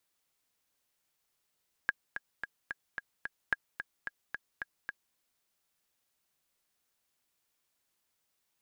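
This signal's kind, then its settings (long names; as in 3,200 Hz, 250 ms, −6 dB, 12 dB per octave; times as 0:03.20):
click track 220 BPM, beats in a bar 6, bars 2, 1,640 Hz, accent 9.5 dB −14 dBFS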